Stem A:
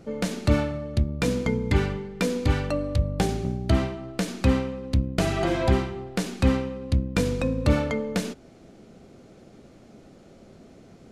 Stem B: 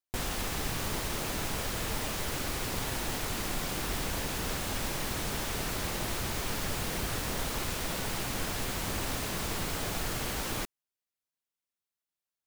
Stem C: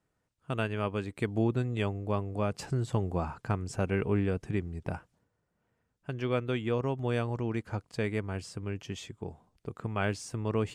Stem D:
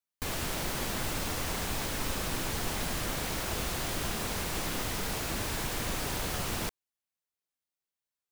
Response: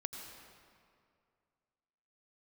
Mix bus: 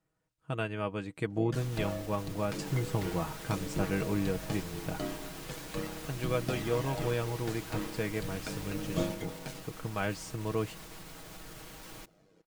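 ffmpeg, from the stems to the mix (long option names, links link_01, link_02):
-filter_complex "[0:a]highpass=120,aphaser=in_gain=1:out_gain=1:delay=3.3:decay=0.52:speed=0.39:type=triangular,aeval=exprs='val(0)*sin(2*PI*49*n/s)':channel_layout=same,adelay=1300,volume=-12.5dB[link_01];[1:a]alimiter=level_in=6.5dB:limit=-24dB:level=0:latency=1:release=140,volume=-6.5dB,adelay=1400,volume=-9dB,asplit=2[link_02][link_03];[link_03]volume=-21dB[link_04];[2:a]volume=-3dB[link_05];[3:a]adelay=2450,volume=-14.5dB[link_06];[4:a]atrim=start_sample=2205[link_07];[link_04][link_07]afir=irnorm=-1:irlink=0[link_08];[link_01][link_02][link_05][link_06][link_08]amix=inputs=5:normalize=0,aecho=1:1:6.3:0.52"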